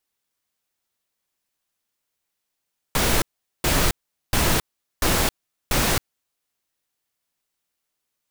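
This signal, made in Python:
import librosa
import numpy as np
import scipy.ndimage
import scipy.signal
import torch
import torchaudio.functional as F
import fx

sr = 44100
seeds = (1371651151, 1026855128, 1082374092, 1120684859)

y = fx.noise_burst(sr, seeds[0], colour='pink', on_s=0.27, off_s=0.42, bursts=5, level_db=-19.5)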